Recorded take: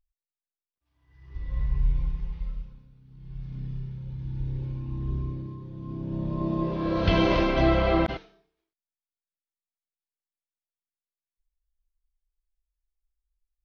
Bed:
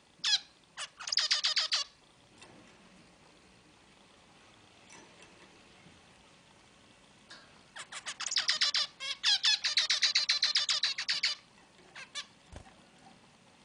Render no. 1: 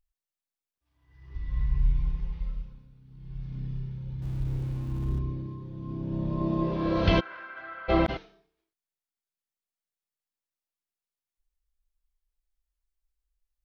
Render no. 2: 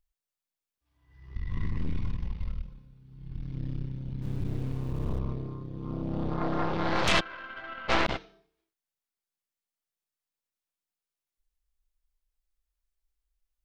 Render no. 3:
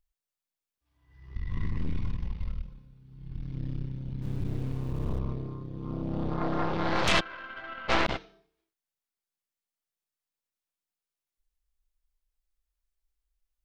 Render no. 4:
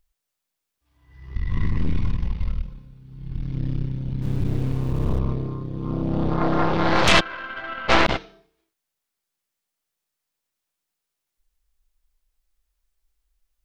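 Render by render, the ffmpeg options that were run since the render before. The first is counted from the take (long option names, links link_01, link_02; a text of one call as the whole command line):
ffmpeg -i in.wav -filter_complex "[0:a]asettb=1/sr,asplit=3[link_01][link_02][link_03];[link_01]atrim=end=1.364[link_04];[link_02]atrim=start=1.36:end=2.06,asetpts=PTS-STARTPTS,afade=type=in:duration=0.004:curve=qsin,afade=type=out:start_time=0.696:duration=0.004:curve=qsin,equalizer=frequency=550:width=1.8:gain=-11[link_05];[link_03]atrim=start=2.056[link_06];[link_04][link_05]acrossfade=duration=0.004:curve1=hsin:curve2=qsin[link_07];[link_07][link_06]acrossfade=duration=0.004:curve1=qsin:curve2=hsin,asettb=1/sr,asplit=3[link_08][link_09][link_10];[link_08]atrim=end=4.224[link_11];[link_09]atrim=start=4.22:end=5.19,asetpts=PTS-STARTPTS,afade=type=in:duration=0.004:curve=qsin,afade=type=out:start_time=0.966:duration=0.004:curve=qsin,aeval=exprs='val(0)+0.5*0.00708*sgn(val(0))':channel_layout=same[link_12];[link_10]atrim=start=5.186[link_13];[link_11][link_12]acrossfade=duration=0.004:curve1=hsin:curve2=qsin[link_14];[link_14][link_13]acrossfade=duration=0.004:curve1=qsin:curve2=hsin,asplit=3[link_15][link_16][link_17];[link_15]afade=type=out:start_time=7.19:duration=0.02[link_18];[link_16]bandpass=frequency=1500:width_type=q:width=9.7,afade=type=in:start_time=7.19:duration=0.02,afade=type=out:start_time=7.88:duration=0.02[link_19];[link_17]afade=type=in:start_time=7.88:duration=0.02[link_20];[link_18][link_19][link_20]amix=inputs=3:normalize=0" out.wav
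ffmpeg -i in.wav -filter_complex "[0:a]aeval=exprs='0.355*(cos(1*acos(clip(val(0)/0.355,-1,1)))-cos(1*PI/2))+0.1*(cos(8*acos(clip(val(0)/0.355,-1,1)))-cos(8*PI/2))':channel_layout=same,acrossover=split=820[link_01][link_02];[link_01]asoftclip=type=tanh:threshold=-23dB[link_03];[link_03][link_02]amix=inputs=2:normalize=0" out.wav
ffmpeg -i in.wav -af anull out.wav
ffmpeg -i in.wav -af "volume=8.5dB" out.wav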